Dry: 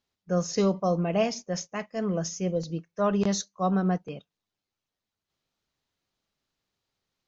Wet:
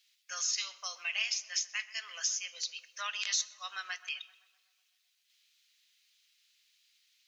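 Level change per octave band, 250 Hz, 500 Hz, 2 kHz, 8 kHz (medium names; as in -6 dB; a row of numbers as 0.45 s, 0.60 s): under -40 dB, -32.5 dB, +4.5 dB, no reading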